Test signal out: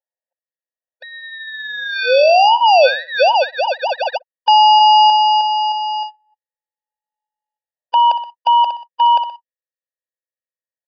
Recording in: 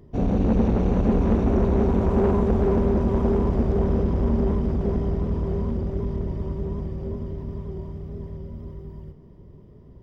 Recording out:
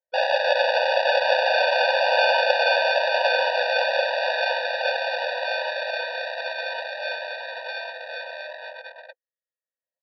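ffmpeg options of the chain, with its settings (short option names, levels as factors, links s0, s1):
-filter_complex "[0:a]asplit=2[s0][s1];[s1]adelay=62,lowpass=f=1800:p=1,volume=0.224,asplit=2[s2][s3];[s3]adelay=62,lowpass=f=1800:p=1,volume=0.45,asplit=2[s4][s5];[s5]adelay=62,lowpass=f=1800:p=1,volume=0.45,asplit=2[s6][s7];[s7]adelay=62,lowpass=f=1800:p=1,volume=0.45[s8];[s0][s2][s4][s6][s8]amix=inputs=5:normalize=0,acrossover=split=2700[s9][s10];[s10]acompressor=threshold=0.0224:ratio=4:attack=1:release=60[s11];[s9][s11]amix=inputs=2:normalize=0,agate=range=0.00141:threshold=0.0141:ratio=16:detection=peak,lowshelf=f=390:g=-10.5,asplit=2[s12][s13];[s13]acompressor=mode=upward:threshold=0.1:ratio=2.5,volume=0.841[s14];[s12][s14]amix=inputs=2:normalize=0,aeval=exprs='val(0)+0.00251*(sin(2*PI*50*n/s)+sin(2*PI*2*50*n/s)/2+sin(2*PI*3*50*n/s)/3+sin(2*PI*4*50*n/s)/4+sin(2*PI*5*50*n/s)/5)':c=same,afreqshift=64,acrusher=samples=22:mix=1:aa=0.000001,anlmdn=1,aresample=11025,aresample=44100,alimiter=level_in=2.82:limit=0.891:release=50:level=0:latency=1,afftfilt=real='re*eq(mod(floor(b*sr/1024/490),2),1)':imag='im*eq(mod(floor(b*sr/1024/490),2),1)':win_size=1024:overlap=0.75,volume=0.891"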